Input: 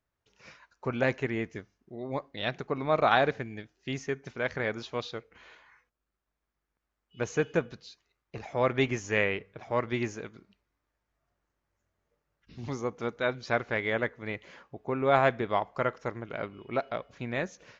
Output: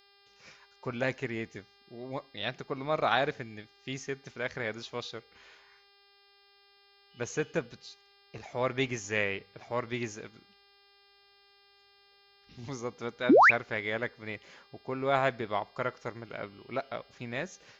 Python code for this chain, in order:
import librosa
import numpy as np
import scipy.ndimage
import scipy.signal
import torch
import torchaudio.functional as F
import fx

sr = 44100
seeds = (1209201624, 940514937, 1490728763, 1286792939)

y = fx.dmg_buzz(x, sr, base_hz=400.0, harmonics=13, level_db=-61.0, tilt_db=-2, odd_only=False)
y = fx.high_shelf(y, sr, hz=3900.0, db=9.0)
y = fx.spec_paint(y, sr, seeds[0], shape='rise', start_s=13.29, length_s=0.22, low_hz=220.0, high_hz=2700.0, level_db=-13.0)
y = y * librosa.db_to_amplitude(-4.5)